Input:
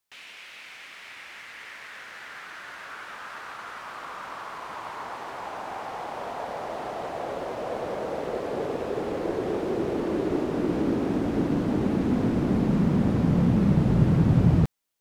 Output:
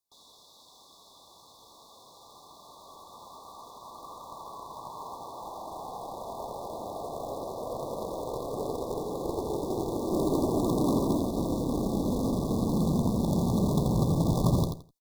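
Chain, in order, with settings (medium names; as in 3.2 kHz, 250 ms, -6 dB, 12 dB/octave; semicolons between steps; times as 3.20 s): 10.12–11.17 s: graphic EQ 125/250/500/2000/4000 Hz +6/+4/+3/+9/-10 dB; short-mantissa float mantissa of 2-bit; Chebyshev shaper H 4 -7 dB, 5 -20 dB, 6 -6 dB, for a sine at -8.5 dBFS; 5.69–7.31 s: frequency shift -19 Hz; brick-wall FIR band-stop 1.2–3.4 kHz; feedback delay 84 ms, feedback 21%, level -6 dB; trim -8.5 dB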